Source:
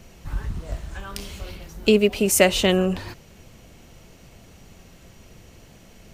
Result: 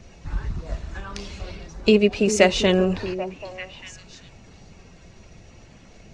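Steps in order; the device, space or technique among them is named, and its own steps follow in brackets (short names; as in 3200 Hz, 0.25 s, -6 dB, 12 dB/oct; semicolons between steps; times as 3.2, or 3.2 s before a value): clip after many re-uploads (LPF 6500 Hz 24 dB/oct; bin magnitudes rounded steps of 15 dB); notch 3100 Hz, Q 12; delay with a stepping band-pass 0.393 s, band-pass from 310 Hz, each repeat 1.4 oct, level -7.5 dB; gain +1 dB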